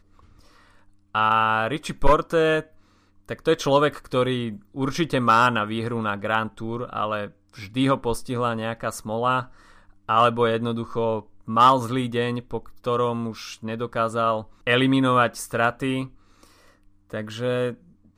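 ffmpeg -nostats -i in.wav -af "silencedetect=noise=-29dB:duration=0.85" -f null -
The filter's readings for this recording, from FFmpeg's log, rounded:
silence_start: 0.00
silence_end: 1.15 | silence_duration: 1.15
silence_start: 16.05
silence_end: 17.13 | silence_duration: 1.09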